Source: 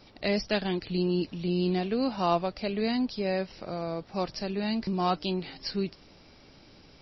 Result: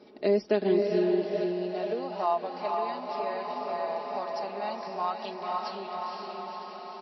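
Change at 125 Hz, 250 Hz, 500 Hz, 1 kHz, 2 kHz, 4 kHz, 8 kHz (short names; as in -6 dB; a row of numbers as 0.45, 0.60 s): -9.5 dB, -4.5 dB, +3.0 dB, +3.0 dB, -4.0 dB, -7.5 dB, n/a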